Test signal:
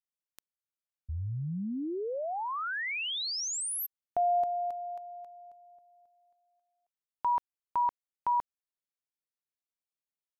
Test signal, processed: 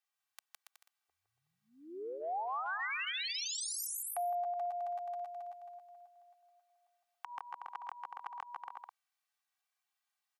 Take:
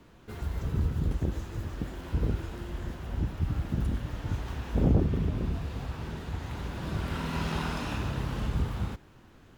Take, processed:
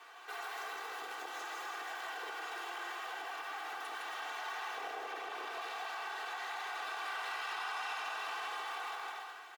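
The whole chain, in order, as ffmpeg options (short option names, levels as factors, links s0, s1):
-af "alimiter=limit=0.075:level=0:latency=1:release=85,highpass=f=750:w=0.5412,highpass=f=750:w=1.3066,highshelf=f=3900:g=-8.5,aecho=1:1:2.6:0.95,aecho=1:1:160|280|370|437.5|488.1:0.631|0.398|0.251|0.158|0.1,acompressor=threshold=0.00562:ratio=4:attack=1.3:release=64:knee=6:detection=rms,volume=2.51"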